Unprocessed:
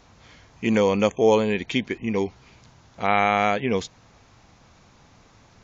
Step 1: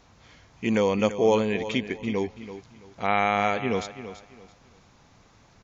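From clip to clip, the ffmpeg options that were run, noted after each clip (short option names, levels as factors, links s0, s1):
-af "aecho=1:1:334|668|1002:0.237|0.064|0.0173,volume=0.708"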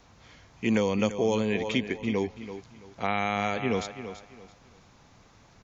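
-filter_complex "[0:a]acrossover=split=270|3000[s0][s1][s2];[s1]acompressor=threshold=0.0562:ratio=6[s3];[s0][s3][s2]amix=inputs=3:normalize=0"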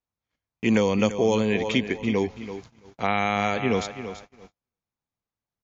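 -af "agate=range=0.01:threshold=0.00447:ratio=16:detection=peak,volume=1.58"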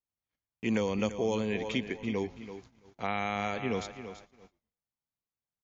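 -filter_complex "[0:a]asplit=3[s0][s1][s2];[s1]adelay=115,afreqshift=-130,volume=0.0668[s3];[s2]adelay=230,afreqshift=-260,volume=0.02[s4];[s0][s3][s4]amix=inputs=3:normalize=0,volume=0.376"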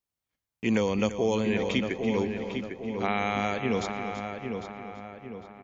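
-filter_complex "[0:a]asplit=2[s0][s1];[s1]adelay=802,lowpass=f=2500:p=1,volume=0.501,asplit=2[s2][s3];[s3]adelay=802,lowpass=f=2500:p=1,volume=0.47,asplit=2[s4][s5];[s5]adelay=802,lowpass=f=2500:p=1,volume=0.47,asplit=2[s6][s7];[s7]adelay=802,lowpass=f=2500:p=1,volume=0.47,asplit=2[s8][s9];[s9]adelay=802,lowpass=f=2500:p=1,volume=0.47,asplit=2[s10][s11];[s11]adelay=802,lowpass=f=2500:p=1,volume=0.47[s12];[s0][s2][s4][s6][s8][s10][s12]amix=inputs=7:normalize=0,volume=1.58"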